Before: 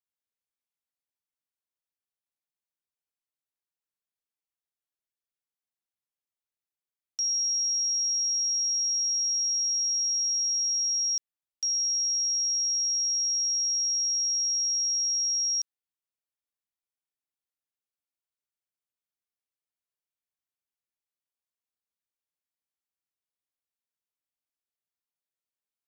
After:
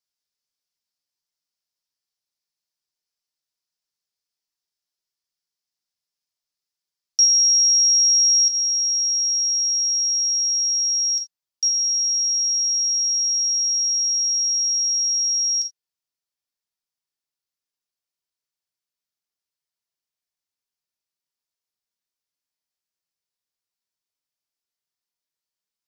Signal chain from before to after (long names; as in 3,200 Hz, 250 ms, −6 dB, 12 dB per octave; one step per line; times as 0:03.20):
parametric band 5,100 Hz +14 dB 0.84 octaves, from 0:08.48 +8 dB
reverb whose tail is shaped and stops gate 100 ms falling, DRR 4.5 dB